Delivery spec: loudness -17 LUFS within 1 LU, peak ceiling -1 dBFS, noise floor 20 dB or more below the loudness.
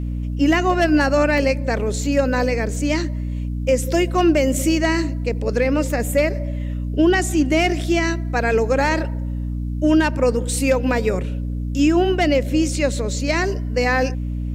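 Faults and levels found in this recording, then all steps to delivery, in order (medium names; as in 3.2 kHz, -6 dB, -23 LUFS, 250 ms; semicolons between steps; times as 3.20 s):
dropouts 1; longest dropout 1.1 ms; hum 60 Hz; highest harmonic 300 Hz; hum level -22 dBFS; loudness -19.5 LUFS; peak level -6.5 dBFS; loudness target -17.0 LUFS
-> interpolate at 1.38 s, 1.1 ms; hum notches 60/120/180/240/300 Hz; trim +2.5 dB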